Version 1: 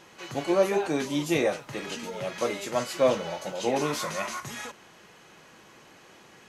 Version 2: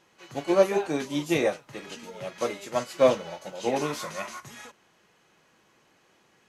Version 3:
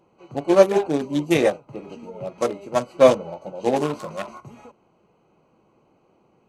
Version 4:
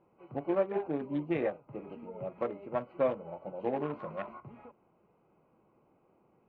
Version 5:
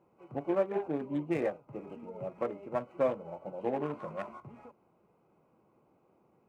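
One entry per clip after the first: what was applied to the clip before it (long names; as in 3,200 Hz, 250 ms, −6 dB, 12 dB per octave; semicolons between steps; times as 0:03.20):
expander for the loud parts 1.5 to 1, over −45 dBFS; level +3.5 dB
adaptive Wiener filter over 25 samples; parametric band 8,900 Hz +4.5 dB 0.75 octaves; level +6.5 dB
low-pass filter 2,400 Hz 24 dB per octave; downward compressor 2 to 1, threshold −25 dBFS, peak gain reduction 10 dB; level −7 dB
running median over 9 samples; high-pass filter 48 Hz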